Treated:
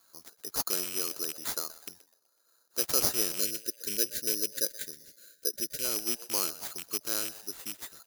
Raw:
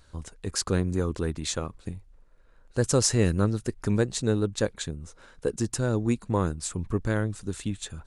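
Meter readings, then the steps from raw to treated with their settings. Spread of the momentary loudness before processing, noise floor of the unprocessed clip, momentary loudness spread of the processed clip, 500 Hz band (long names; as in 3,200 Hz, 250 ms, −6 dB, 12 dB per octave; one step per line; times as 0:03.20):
13 LU, −56 dBFS, 13 LU, −12.0 dB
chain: loose part that buzzes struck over −28 dBFS, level −21 dBFS
loudspeaker in its box 340–6,900 Hz, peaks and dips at 350 Hz +5 dB, 660 Hz +3 dB, 1,300 Hz +9 dB, 2,100 Hz −3 dB, 4,800 Hz +8 dB
echo with shifted repeats 125 ms, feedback 44%, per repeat +120 Hz, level −17 dB
bad sample-rate conversion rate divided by 8×, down none, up zero stuff
time-frequency box erased 0:03.40–0:05.84, 610–1,400 Hz
level −13 dB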